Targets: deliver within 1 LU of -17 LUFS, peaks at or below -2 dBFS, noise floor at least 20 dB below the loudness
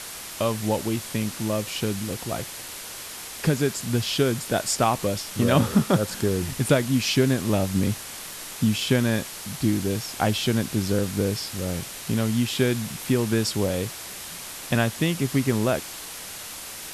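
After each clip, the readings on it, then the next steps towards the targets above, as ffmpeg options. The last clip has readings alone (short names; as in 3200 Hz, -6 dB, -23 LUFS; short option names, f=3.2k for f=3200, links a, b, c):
noise floor -38 dBFS; noise floor target -45 dBFS; loudness -25.0 LUFS; peak -5.5 dBFS; loudness target -17.0 LUFS
-> -af "afftdn=nr=7:nf=-38"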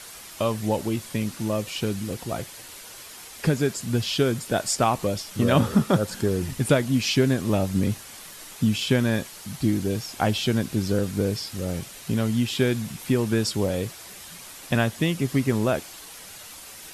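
noise floor -43 dBFS; noise floor target -45 dBFS
-> -af "afftdn=nr=6:nf=-43"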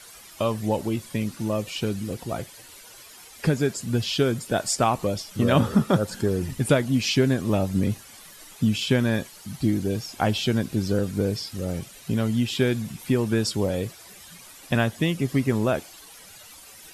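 noise floor -47 dBFS; loudness -25.0 LUFS; peak -5.5 dBFS; loudness target -17.0 LUFS
-> -af "volume=8dB,alimiter=limit=-2dB:level=0:latency=1"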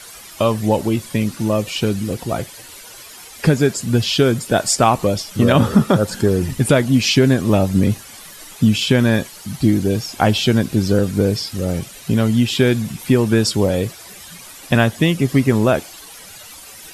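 loudness -17.5 LUFS; peak -2.0 dBFS; noise floor -39 dBFS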